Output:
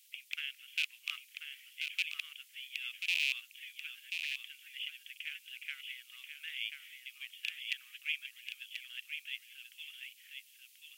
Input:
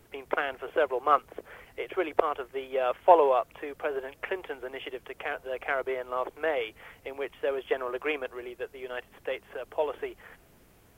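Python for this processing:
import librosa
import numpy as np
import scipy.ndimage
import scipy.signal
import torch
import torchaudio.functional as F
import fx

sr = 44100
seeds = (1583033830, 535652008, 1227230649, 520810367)

p1 = fx.rattle_buzz(x, sr, strikes_db=-37.0, level_db=-18.0)
p2 = scipy.signal.sosfilt(scipy.signal.butter(6, 2600.0, 'highpass', fs=sr, output='sos'), p1)
p3 = p2 + fx.echo_single(p2, sr, ms=1036, db=-6.5, dry=0)
y = p3 * 10.0 ** (4.0 / 20.0)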